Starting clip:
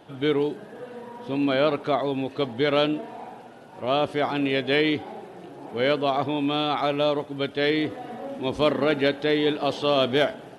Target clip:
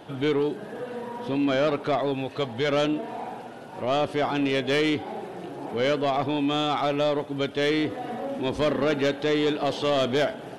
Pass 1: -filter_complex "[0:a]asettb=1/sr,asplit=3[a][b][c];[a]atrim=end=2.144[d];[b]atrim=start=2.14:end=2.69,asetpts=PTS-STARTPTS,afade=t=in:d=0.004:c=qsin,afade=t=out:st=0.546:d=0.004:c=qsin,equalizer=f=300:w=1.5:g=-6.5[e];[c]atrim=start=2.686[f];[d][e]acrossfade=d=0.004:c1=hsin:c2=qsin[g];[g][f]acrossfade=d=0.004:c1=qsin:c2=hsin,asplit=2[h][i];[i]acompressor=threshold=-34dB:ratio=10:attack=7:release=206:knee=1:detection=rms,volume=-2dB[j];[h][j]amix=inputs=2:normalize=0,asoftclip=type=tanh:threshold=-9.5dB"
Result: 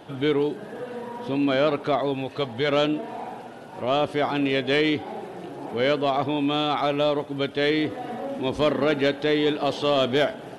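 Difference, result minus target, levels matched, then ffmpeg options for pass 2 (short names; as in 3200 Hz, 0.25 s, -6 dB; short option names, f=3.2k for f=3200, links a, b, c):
soft clip: distortion -9 dB
-filter_complex "[0:a]asettb=1/sr,asplit=3[a][b][c];[a]atrim=end=2.144[d];[b]atrim=start=2.14:end=2.69,asetpts=PTS-STARTPTS,afade=t=in:d=0.004:c=qsin,afade=t=out:st=0.546:d=0.004:c=qsin,equalizer=f=300:w=1.5:g=-6.5[e];[c]atrim=start=2.686[f];[d][e]acrossfade=d=0.004:c1=hsin:c2=qsin[g];[g][f]acrossfade=d=0.004:c1=qsin:c2=hsin,asplit=2[h][i];[i]acompressor=threshold=-34dB:ratio=10:attack=7:release=206:knee=1:detection=rms,volume=-2dB[j];[h][j]amix=inputs=2:normalize=0,asoftclip=type=tanh:threshold=-16.5dB"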